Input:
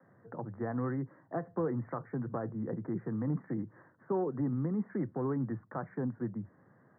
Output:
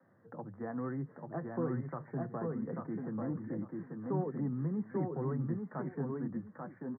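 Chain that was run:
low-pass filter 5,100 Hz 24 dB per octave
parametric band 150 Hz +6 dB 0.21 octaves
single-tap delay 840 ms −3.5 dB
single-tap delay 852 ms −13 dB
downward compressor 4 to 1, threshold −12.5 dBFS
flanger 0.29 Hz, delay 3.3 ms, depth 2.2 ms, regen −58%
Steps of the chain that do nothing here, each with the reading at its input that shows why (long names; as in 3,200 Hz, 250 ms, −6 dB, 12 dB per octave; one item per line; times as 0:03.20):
low-pass filter 5,100 Hz: nothing at its input above 1,400 Hz
downward compressor, threshold −12.5 dBFS: peak of its input −18.0 dBFS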